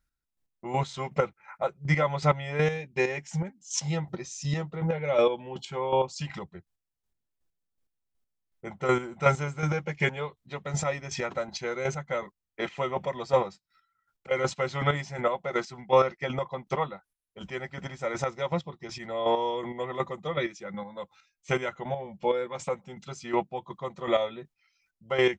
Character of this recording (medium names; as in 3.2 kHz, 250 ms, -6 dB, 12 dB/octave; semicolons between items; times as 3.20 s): chopped level 2.7 Hz, depth 60%, duty 25%